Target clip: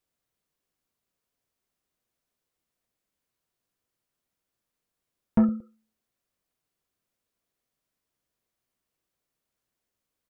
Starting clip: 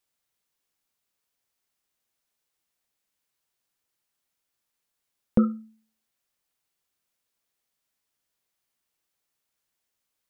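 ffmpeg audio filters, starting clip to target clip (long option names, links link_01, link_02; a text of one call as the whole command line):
ffmpeg -i in.wav -af "tiltshelf=frequency=970:gain=5,bandreject=frequency=850:width=12,aecho=1:1:115|230:0.0794|0.023,asoftclip=type=tanh:threshold=-14dB" out.wav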